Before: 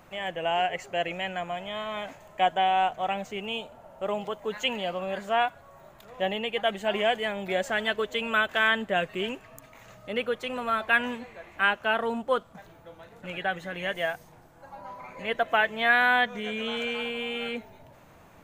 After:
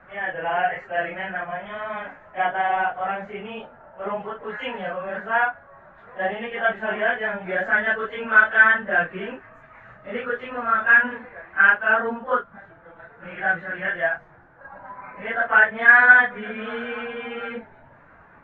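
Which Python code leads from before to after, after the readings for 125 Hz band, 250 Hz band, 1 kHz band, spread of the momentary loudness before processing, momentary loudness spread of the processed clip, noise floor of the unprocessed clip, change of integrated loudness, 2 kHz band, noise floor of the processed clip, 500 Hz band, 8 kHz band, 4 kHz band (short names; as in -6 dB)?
n/a, 0.0 dB, +3.5 dB, 13 LU, 19 LU, -54 dBFS, +7.0 dB, +10.0 dB, -51 dBFS, +1.0 dB, under -25 dB, -9.0 dB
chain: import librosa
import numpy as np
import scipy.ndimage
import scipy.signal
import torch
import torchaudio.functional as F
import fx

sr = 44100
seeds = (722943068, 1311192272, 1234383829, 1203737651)

y = fx.phase_scramble(x, sr, seeds[0], window_ms=100)
y = fx.lowpass_res(y, sr, hz=1600.0, q=3.7)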